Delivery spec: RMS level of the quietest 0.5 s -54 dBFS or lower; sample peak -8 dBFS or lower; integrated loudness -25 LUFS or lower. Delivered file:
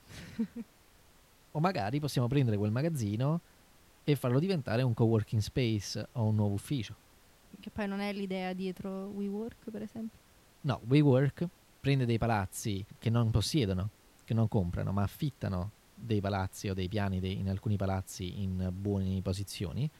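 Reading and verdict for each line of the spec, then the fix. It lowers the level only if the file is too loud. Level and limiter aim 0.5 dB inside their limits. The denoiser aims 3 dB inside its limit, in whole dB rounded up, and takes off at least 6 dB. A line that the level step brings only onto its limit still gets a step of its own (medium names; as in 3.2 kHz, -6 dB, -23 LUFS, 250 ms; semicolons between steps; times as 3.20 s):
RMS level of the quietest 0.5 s -62 dBFS: pass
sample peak -15.0 dBFS: pass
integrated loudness -33.0 LUFS: pass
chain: none needed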